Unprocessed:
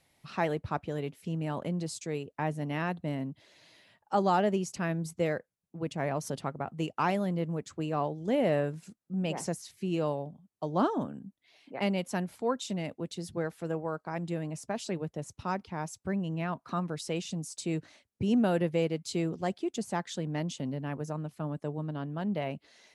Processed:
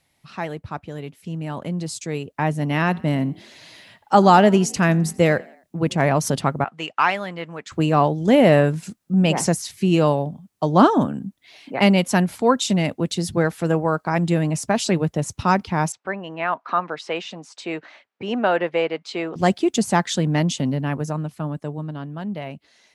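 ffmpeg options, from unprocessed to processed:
ffmpeg -i in.wav -filter_complex "[0:a]asettb=1/sr,asplit=3[link_01][link_02][link_03];[link_01]atrim=end=2.754[link_04];[link_02]atrim=start=2.75:end=6.02,asetpts=PTS-STARTPTS,afade=type=in:duration=0.004:curve=qsin,afade=type=out:start_time=3.266:duration=0.004:curve=qsin,asplit=4[link_05][link_06][link_07][link_08];[link_06]adelay=86,afreqshift=39,volume=-23.5dB[link_09];[link_07]adelay=172,afreqshift=78,volume=-30.1dB[link_10];[link_08]adelay=258,afreqshift=117,volume=-36.6dB[link_11];[link_05][link_09][link_10][link_11]amix=inputs=4:normalize=0,atrim=end_sample=144207[link_12];[link_03]atrim=start=6.016[link_13];[link_04][link_12]acrossfade=duration=0.004:curve1=hsin:curve2=qsin[link_14];[link_14][link_13]acrossfade=duration=0.004:curve1=qsin:curve2=hsin,asettb=1/sr,asplit=3[link_15][link_16][link_17];[link_15]atrim=end=6.644[link_18];[link_16]atrim=start=6.64:end=7.72,asetpts=PTS-STARTPTS,afade=type=in:duration=0.004:curve=qsin,afade=type=out:start_time=1.076:duration=0.004:curve=qsin,bandpass=frequency=1900:width_type=q:width=0.84[link_19];[link_17]atrim=start=7.716[link_20];[link_18][link_19]acrossfade=duration=0.004:curve1=hsin:curve2=qsin[link_21];[link_21][link_20]acrossfade=duration=0.004:curve1=qsin:curve2=hsin,asettb=1/sr,asplit=3[link_22][link_23][link_24];[link_22]atrim=end=15.924[link_25];[link_23]atrim=start=15.92:end=19.36,asetpts=PTS-STARTPTS,afade=type=in:duration=0.004:curve=qsin,afade=type=out:start_time=3.436:duration=0.004:curve=qsin,highpass=570,lowpass=2400[link_26];[link_24]atrim=start=19.356[link_27];[link_25][link_26]acrossfade=duration=0.004:curve1=hsin:curve2=qsin[link_28];[link_28][link_27]acrossfade=duration=0.004:curve1=qsin:curve2=hsin,equalizer=frequency=470:width=1.1:gain=-3.5,dynaudnorm=framelen=360:gausssize=13:maxgain=13.5dB,volume=2.5dB" out.wav

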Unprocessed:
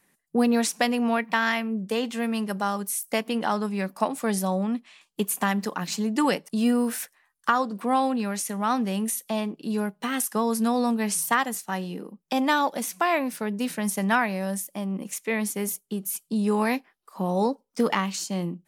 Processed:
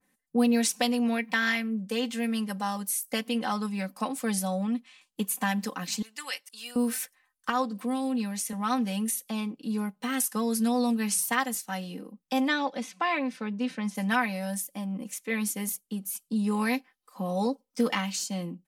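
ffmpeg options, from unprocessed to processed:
ffmpeg -i in.wav -filter_complex "[0:a]asettb=1/sr,asplit=3[link_01][link_02][link_03];[link_01]atrim=end=6.024[link_04];[link_02]atrim=start=6.02:end=6.76,asetpts=PTS-STARTPTS,afade=type=in:duration=0.004:curve=qsin,afade=type=out:start_time=0.736:duration=0.004:curve=qsin,highpass=1500[link_05];[link_03]atrim=start=6.756[link_06];[link_04][link_05]acrossfade=duration=0.004:curve1=hsin:curve2=qsin[link_07];[link_07][link_06]acrossfade=duration=0.004:curve1=qsin:curve2=hsin,asettb=1/sr,asplit=3[link_08][link_09][link_10];[link_08]atrim=end=7.814[link_11];[link_09]atrim=start=7.81:end=8.53,asetpts=PTS-STARTPTS,afade=type=in:duration=0.004:curve=qsin,afade=type=out:start_time=0.716:duration=0.004:curve=qsin,acrossover=split=450|3000[link_12][link_13][link_14];[link_13]acompressor=threshold=-37dB:ratio=5:attack=3.2:release=140:knee=2.83:detection=peak[link_15];[link_12][link_15][link_14]amix=inputs=3:normalize=0[link_16];[link_10]atrim=start=8.526[link_17];[link_11][link_16]acrossfade=duration=0.004:curve1=hsin:curve2=qsin[link_18];[link_18][link_17]acrossfade=duration=0.004:curve1=qsin:curve2=hsin,asplit=3[link_19][link_20][link_21];[link_19]afade=type=out:start_time=12.47:duration=0.02[link_22];[link_20]highpass=130,lowpass=4100,afade=type=in:start_time=12.47:duration=0.02,afade=type=out:start_time=13.94:duration=0.02[link_23];[link_21]afade=type=in:start_time=13.94:duration=0.02[link_24];[link_22][link_23][link_24]amix=inputs=3:normalize=0,equalizer=frequency=93:width_type=o:width=3:gain=3,aecho=1:1:3.9:0.74,adynamicequalizer=threshold=0.02:dfrequency=1800:dqfactor=0.7:tfrequency=1800:tqfactor=0.7:attack=5:release=100:ratio=0.375:range=3:mode=boostabove:tftype=highshelf,volume=-7.5dB" out.wav

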